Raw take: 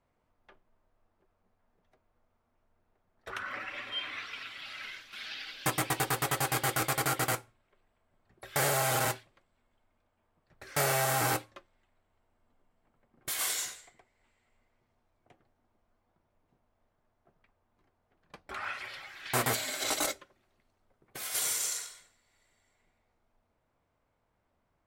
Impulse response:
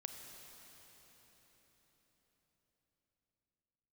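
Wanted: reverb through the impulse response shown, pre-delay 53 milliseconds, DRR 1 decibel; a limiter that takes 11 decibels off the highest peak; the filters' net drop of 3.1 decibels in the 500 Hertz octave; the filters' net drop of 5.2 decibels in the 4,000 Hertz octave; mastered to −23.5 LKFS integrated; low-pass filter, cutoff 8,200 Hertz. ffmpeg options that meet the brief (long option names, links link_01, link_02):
-filter_complex "[0:a]lowpass=8200,equalizer=frequency=500:width_type=o:gain=-4,equalizer=frequency=4000:width_type=o:gain=-6.5,alimiter=level_in=5dB:limit=-24dB:level=0:latency=1,volume=-5dB,asplit=2[link_01][link_02];[1:a]atrim=start_sample=2205,adelay=53[link_03];[link_02][link_03]afir=irnorm=-1:irlink=0,volume=2dB[link_04];[link_01][link_04]amix=inputs=2:normalize=0,volume=15dB"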